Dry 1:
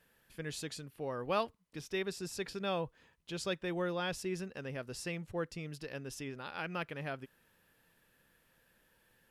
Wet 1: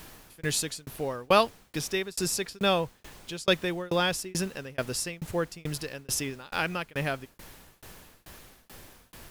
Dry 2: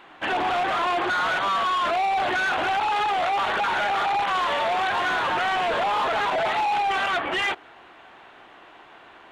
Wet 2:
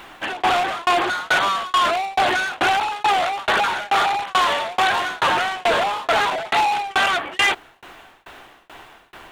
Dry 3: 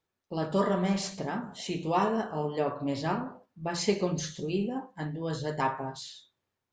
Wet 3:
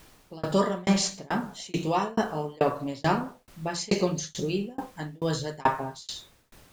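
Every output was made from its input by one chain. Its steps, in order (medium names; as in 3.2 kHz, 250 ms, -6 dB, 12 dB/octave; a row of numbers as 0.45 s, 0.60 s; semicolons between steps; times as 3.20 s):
treble shelf 5.1 kHz +11 dB; added noise pink -59 dBFS; tremolo saw down 2.3 Hz, depth 100%; peak normalisation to -9 dBFS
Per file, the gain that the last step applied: +12.5 dB, +7.5 dB, +7.0 dB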